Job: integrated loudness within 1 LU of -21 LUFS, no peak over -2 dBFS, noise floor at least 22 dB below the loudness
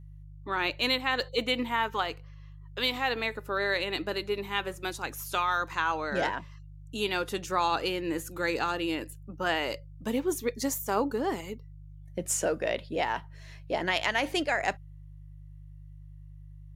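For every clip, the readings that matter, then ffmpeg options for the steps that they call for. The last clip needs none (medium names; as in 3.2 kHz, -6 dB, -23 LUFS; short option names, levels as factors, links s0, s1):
hum 50 Hz; highest harmonic 150 Hz; hum level -44 dBFS; loudness -30.0 LUFS; peak level -13.5 dBFS; loudness target -21.0 LUFS
-> -af "bandreject=f=50:t=h:w=4,bandreject=f=100:t=h:w=4,bandreject=f=150:t=h:w=4"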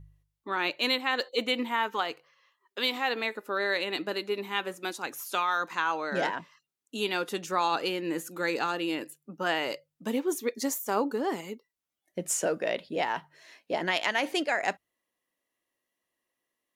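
hum not found; loudness -30.0 LUFS; peak level -13.5 dBFS; loudness target -21.0 LUFS
-> -af "volume=2.82"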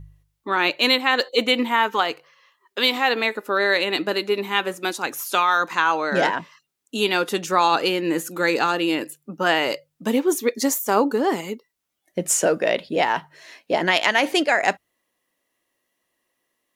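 loudness -21.0 LUFS; peak level -4.5 dBFS; noise floor -76 dBFS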